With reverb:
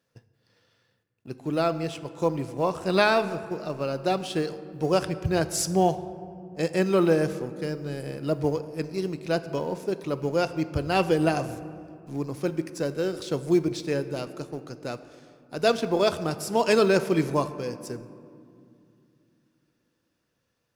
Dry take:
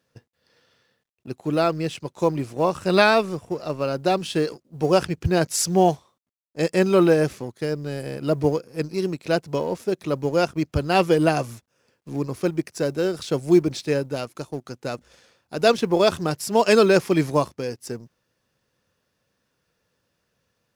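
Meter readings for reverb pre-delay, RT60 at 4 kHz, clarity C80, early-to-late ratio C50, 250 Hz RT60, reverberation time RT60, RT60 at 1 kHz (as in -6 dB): 6 ms, 1.2 s, 14.5 dB, 13.5 dB, 3.7 s, 2.5 s, 2.3 s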